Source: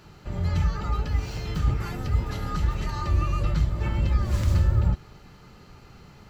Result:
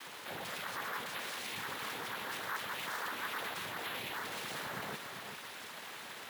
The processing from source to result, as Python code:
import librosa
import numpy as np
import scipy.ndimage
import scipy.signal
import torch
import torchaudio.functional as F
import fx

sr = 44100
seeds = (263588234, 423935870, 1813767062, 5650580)

p1 = scipy.signal.sosfilt(scipy.signal.bessel(2, 650.0, 'highpass', norm='mag', fs=sr, output='sos'), x)
p2 = fx.peak_eq(p1, sr, hz=3600.0, db=9.5, octaves=2.3)
p3 = fx.over_compress(p2, sr, threshold_db=-45.0, ratio=-1.0)
p4 = p2 + (p3 * 10.0 ** (-0.5 / 20.0))
p5 = np.clip(10.0 ** (30.5 / 20.0) * p4, -1.0, 1.0) / 10.0 ** (30.5 / 20.0)
p6 = fx.noise_vocoder(p5, sr, seeds[0], bands=6)
p7 = fx.air_absorb(p6, sr, metres=92.0)
p8 = p7 + fx.echo_single(p7, sr, ms=394, db=-7.0, dry=0)
p9 = np.repeat(p8[::3], 3)[:len(p8)]
y = p9 * 10.0 ** (-5.0 / 20.0)